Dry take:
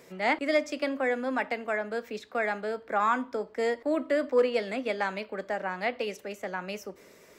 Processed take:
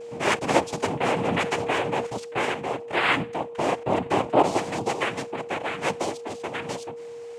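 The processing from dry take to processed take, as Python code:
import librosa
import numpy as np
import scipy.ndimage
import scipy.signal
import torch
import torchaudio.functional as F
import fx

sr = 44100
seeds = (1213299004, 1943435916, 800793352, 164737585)

y = fx.noise_vocoder(x, sr, seeds[0], bands=4)
y = y + 10.0 ** (-39.0 / 20.0) * np.sin(2.0 * np.pi * 470.0 * np.arange(len(y)) / sr)
y = fx.env_flatten(y, sr, amount_pct=50, at=(1.0, 2.07))
y = F.gain(torch.from_numpy(y), 3.5).numpy()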